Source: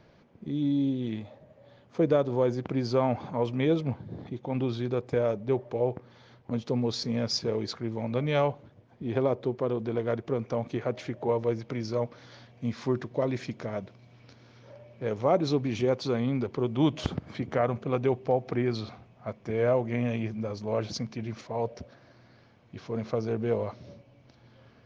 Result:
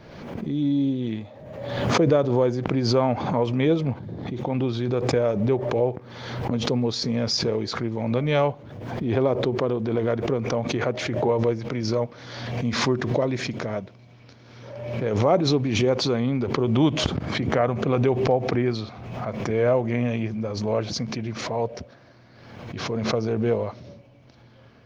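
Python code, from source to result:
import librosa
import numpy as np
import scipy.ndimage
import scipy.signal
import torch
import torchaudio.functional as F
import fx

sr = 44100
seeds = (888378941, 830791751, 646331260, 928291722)

y = fx.pre_swell(x, sr, db_per_s=43.0)
y = y * 10.0 ** (4.0 / 20.0)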